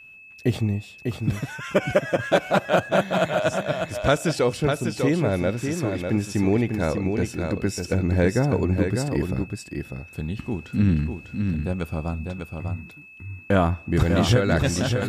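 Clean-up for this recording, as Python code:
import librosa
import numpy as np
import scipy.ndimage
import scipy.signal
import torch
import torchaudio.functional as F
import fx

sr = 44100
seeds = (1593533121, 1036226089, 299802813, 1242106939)

y = fx.notch(x, sr, hz=2600.0, q=30.0)
y = fx.fix_echo_inverse(y, sr, delay_ms=598, level_db=-5.5)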